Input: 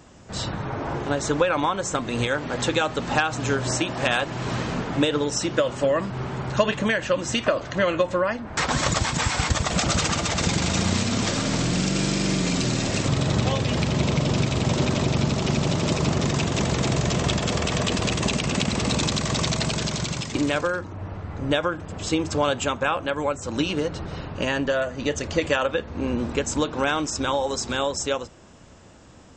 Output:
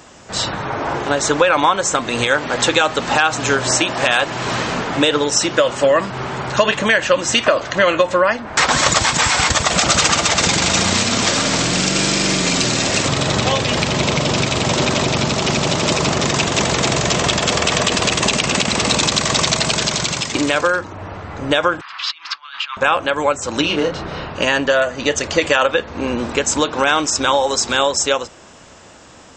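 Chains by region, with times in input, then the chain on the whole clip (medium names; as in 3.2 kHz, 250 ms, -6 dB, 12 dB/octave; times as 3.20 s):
21.81–22.77 s: compressor with a negative ratio -29 dBFS, ratio -0.5 + elliptic band-pass 1.1–4.7 kHz
23.61–24.30 s: distance through air 100 m + doubling 30 ms -5 dB
whole clip: bass shelf 330 Hz -12 dB; loudness maximiser +12 dB; trim -1 dB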